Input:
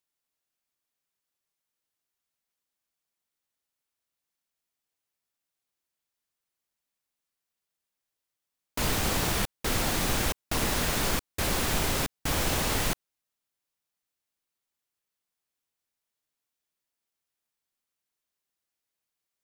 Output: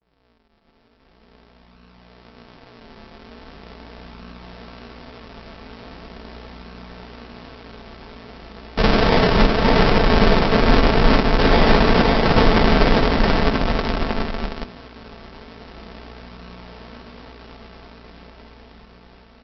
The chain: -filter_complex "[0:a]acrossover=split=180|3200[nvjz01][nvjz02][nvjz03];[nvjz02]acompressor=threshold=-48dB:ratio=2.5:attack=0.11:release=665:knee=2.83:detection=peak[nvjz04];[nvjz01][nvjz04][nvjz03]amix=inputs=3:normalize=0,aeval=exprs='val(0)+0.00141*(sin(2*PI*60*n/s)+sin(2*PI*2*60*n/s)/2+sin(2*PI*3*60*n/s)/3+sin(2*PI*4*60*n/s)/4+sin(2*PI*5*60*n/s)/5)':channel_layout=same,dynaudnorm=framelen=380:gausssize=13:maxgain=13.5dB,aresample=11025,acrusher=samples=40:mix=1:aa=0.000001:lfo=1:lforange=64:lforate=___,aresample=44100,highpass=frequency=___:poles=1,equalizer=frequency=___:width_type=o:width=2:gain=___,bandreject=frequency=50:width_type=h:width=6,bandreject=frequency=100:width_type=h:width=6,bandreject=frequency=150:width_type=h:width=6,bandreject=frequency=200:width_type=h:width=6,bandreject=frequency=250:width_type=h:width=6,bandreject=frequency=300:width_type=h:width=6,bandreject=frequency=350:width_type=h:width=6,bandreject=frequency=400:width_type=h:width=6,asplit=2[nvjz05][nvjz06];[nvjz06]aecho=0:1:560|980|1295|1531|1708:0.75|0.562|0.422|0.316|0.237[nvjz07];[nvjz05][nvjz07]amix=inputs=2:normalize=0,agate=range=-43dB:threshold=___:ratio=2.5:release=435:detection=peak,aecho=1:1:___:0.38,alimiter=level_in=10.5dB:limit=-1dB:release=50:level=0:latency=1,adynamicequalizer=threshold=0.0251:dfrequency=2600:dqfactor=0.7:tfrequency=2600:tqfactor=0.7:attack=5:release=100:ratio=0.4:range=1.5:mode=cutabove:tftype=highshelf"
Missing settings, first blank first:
0.41, 51, 77, -11.5, -56dB, 4.5